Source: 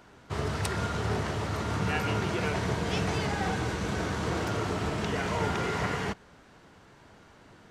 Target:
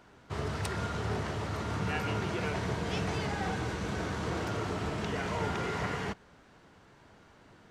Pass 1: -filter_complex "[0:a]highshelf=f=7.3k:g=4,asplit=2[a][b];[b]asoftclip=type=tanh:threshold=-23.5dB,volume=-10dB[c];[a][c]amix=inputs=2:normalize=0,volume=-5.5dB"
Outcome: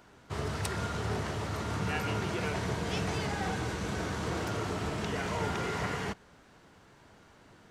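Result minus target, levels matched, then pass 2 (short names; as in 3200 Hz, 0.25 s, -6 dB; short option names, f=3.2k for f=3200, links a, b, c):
8000 Hz band +3.0 dB
-filter_complex "[0:a]highshelf=f=7.3k:g=-3.5,asplit=2[a][b];[b]asoftclip=type=tanh:threshold=-23.5dB,volume=-10dB[c];[a][c]amix=inputs=2:normalize=0,volume=-5.5dB"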